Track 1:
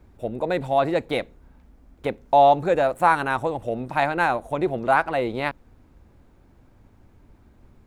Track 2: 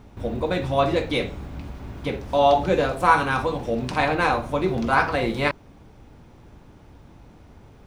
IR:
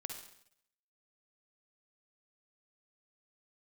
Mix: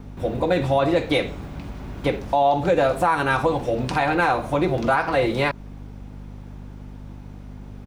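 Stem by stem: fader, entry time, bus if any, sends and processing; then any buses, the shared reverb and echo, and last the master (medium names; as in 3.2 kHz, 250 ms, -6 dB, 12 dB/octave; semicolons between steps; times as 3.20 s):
+2.0 dB, 0.00 s, no send, none
+2.5 dB, 1.7 ms, polarity flipped, no send, hum 50 Hz, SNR 12 dB; bass shelf 92 Hz -7.5 dB; compression, threshold -21 dBFS, peak gain reduction 10 dB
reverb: none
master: peak limiter -10 dBFS, peak gain reduction 8.5 dB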